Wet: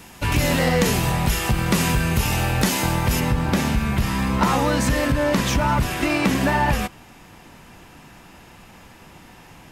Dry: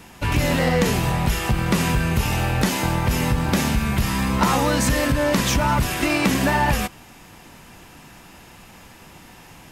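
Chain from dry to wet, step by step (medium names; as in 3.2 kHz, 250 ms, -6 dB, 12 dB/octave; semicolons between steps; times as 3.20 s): treble shelf 4.1 kHz +4.5 dB, from 3.20 s -5 dB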